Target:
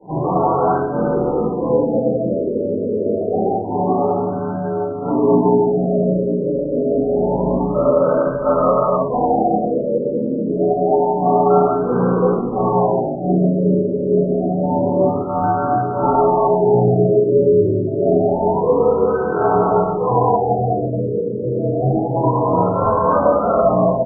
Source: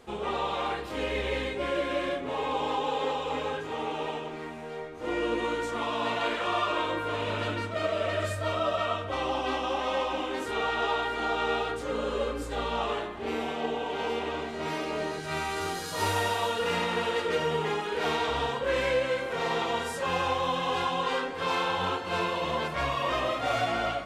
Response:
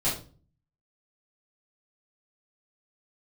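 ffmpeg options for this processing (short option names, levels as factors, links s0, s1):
-filter_complex "[0:a]highpass=f=150:t=q:w=0.5412,highpass=f=150:t=q:w=1.307,lowpass=f=2600:t=q:w=0.5176,lowpass=f=2600:t=q:w=0.7071,lowpass=f=2600:t=q:w=1.932,afreqshift=-51,asplit=2[s0][s1];[s1]asetrate=37084,aresample=44100,atempo=1.18921,volume=0.316[s2];[s0][s2]amix=inputs=2:normalize=0[s3];[1:a]atrim=start_sample=2205[s4];[s3][s4]afir=irnorm=-1:irlink=0,afftfilt=real='re*lt(b*sr/1024,610*pow(1600/610,0.5+0.5*sin(2*PI*0.27*pts/sr)))':imag='im*lt(b*sr/1024,610*pow(1600/610,0.5+0.5*sin(2*PI*0.27*pts/sr)))':win_size=1024:overlap=0.75,volume=1.41"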